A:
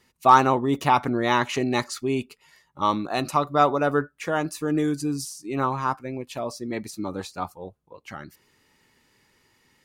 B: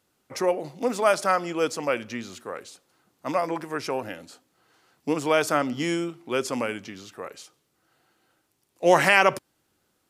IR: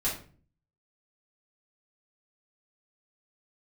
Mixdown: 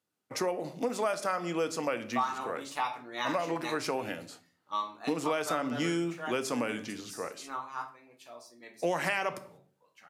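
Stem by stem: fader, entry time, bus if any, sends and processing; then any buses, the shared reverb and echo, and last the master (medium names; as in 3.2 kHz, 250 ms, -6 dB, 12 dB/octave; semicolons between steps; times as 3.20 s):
-7.0 dB, 1.90 s, send -4 dB, high-pass 1.4 kHz 6 dB/octave; upward expansion 1.5:1, over -40 dBFS
-2.5 dB, 0.00 s, send -15.5 dB, gate -52 dBFS, range -13 dB; high-pass 85 Hz 24 dB/octave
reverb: on, RT60 0.40 s, pre-delay 3 ms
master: compression 6:1, threshold -27 dBFS, peak gain reduction 13 dB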